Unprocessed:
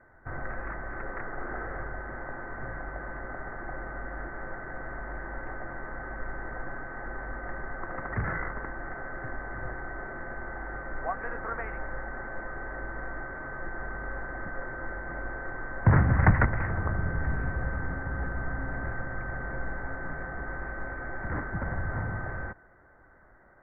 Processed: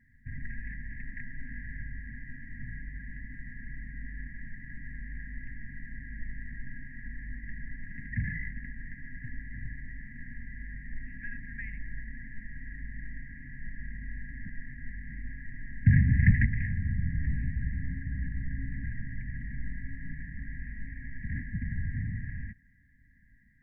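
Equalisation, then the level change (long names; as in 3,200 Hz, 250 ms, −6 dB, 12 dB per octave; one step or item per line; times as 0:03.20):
linear-phase brick-wall band-stop 280–1,600 Hz
0.0 dB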